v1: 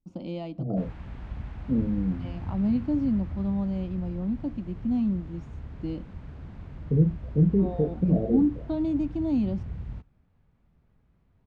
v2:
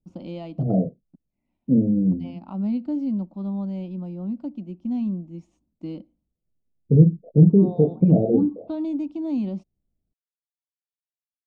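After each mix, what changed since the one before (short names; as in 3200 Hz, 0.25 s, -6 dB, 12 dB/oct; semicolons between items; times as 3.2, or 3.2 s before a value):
second voice +7.5 dB; background: muted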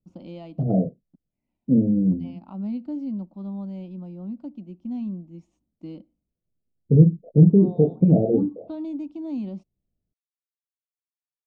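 first voice -4.5 dB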